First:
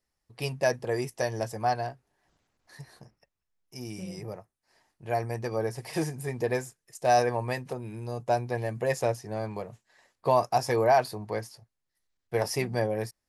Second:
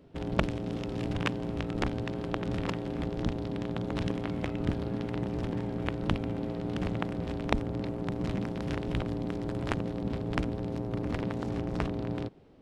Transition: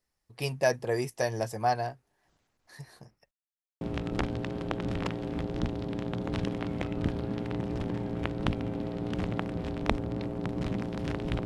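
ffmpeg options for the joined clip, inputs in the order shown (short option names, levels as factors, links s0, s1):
-filter_complex "[0:a]apad=whole_dur=11.45,atrim=end=11.45,asplit=2[s0][s1];[s0]atrim=end=3.31,asetpts=PTS-STARTPTS,afade=t=out:st=3.306:d=0.004:c=hsin[s2];[s1]atrim=start=3.31:end=3.81,asetpts=PTS-STARTPTS,volume=0[s3];[1:a]atrim=start=1.44:end=9.08,asetpts=PTS-STARTPTS,afade=t=in:d=0.004:c=hsin[s4];[s2][s3][s4]concat=n=3:v=0:a=1"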